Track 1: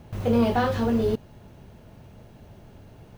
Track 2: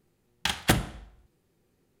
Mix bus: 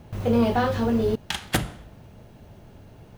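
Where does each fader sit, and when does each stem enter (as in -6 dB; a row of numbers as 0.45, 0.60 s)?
+0.5, -1.5 dB; 0.00, 0.85 s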